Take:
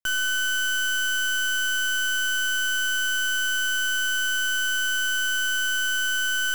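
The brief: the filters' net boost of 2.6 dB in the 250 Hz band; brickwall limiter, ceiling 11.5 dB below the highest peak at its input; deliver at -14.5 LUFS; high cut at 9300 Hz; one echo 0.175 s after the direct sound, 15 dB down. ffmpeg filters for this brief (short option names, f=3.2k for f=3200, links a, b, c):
-af "lowpass=9.3k,equalizer=f=250:t=o:g=3.5,alimiter=level_in=10.5dB:limit=-24dB:level=0:latency=1,volume=-10.5dB,aecho=1:1:175:0.178,volume=20dB"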